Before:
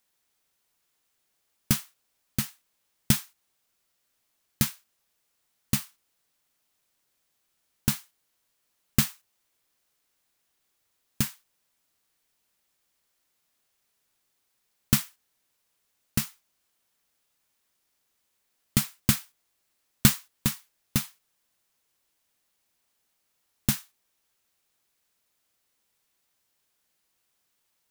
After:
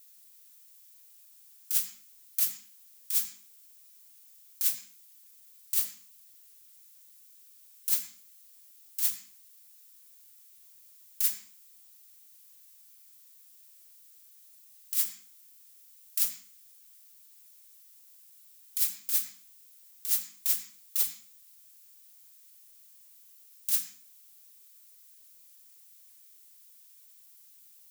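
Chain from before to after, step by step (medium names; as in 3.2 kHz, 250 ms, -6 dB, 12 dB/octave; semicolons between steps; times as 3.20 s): high-pass 190 Hz 12 dB/octave; differentiator; hum notches 50/100/150/200/250/300/350/400/450 Hz; compressor with a negative ratio -30 dBFS, ratio -1; added noise violet -61 dBFS; phase dispersion lows, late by 92 ms, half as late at 390 Hz; on a send: reverberation RT60 0.45 s, pre-delay 77 ms, DRR 10 dB; on the sum: trim +3.5 dB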